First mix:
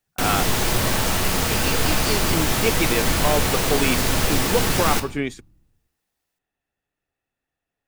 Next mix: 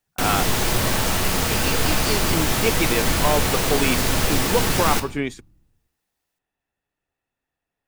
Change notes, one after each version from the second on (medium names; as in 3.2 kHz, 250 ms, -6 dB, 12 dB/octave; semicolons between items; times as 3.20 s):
speech: add peaking EQ 960 Hz +5.5 dB 0.22 oct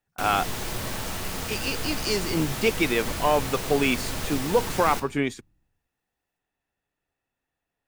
background -10.5 dB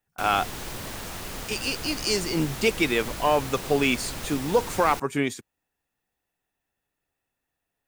speech: add treble shelf 7.3 kHz +10 dB; reverb: off